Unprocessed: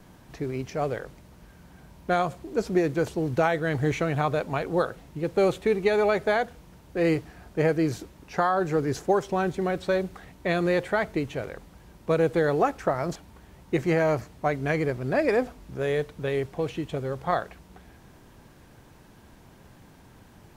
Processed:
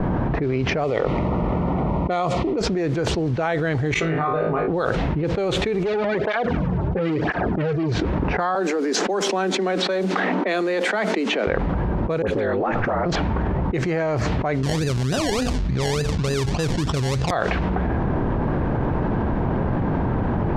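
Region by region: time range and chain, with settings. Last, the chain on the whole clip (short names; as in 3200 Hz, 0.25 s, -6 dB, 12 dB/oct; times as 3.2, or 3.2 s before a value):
0.84–2.61 Butterworth band-stop 1600 Hz, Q 3.8 + low shelf 140 Hz -9 dB
3.94–4.68 resonator 400 Hz, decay 0.19 s, harmonics odd, mix 90% + flutter echo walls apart 3.2 m, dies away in 0.45 s
5.83–7.92 LFO notch saw down 9.5 Hz 570–5500 Hz + tube stage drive 24 dB, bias 0.45 + tape flanging out of phase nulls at 1 Hz, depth 4.3 ms
8.55–11.47 steep high-pass 190 Hz 96 dB/oct + high shelf 7400 Hz +11.5 dB
12.22–13.06 ring modulator 52 Hz + compressor 2.5:1, threshold -33 dBFS + dispersion highs, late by 55 ms, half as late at 1400 Hz
14.63–17.31 decimation with a swept rate 28×, swing 60% 3.4 Hz + tone controls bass +9 dB, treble +12 dB
whole clip: LPF 5300 Hz 12 dB/oct; low-pass opened by the level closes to 970 Hz, open at -21.5 dBFS; fast leveller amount 100%; gain -4 dB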